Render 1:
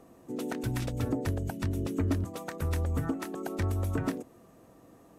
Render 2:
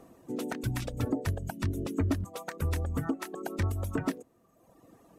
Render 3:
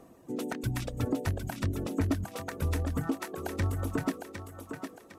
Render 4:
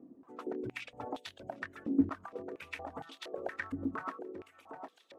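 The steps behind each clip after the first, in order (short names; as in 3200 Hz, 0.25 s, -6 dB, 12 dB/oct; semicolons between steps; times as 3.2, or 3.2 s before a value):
reverb removal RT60 1.2 s; gain +1.5 dB
thinning echo 0.757 s, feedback 38%, high-pass 270 Hz, level -6 dB
stepped band-pass 4.3 Hz 270–3500 Hz; gain +6 dB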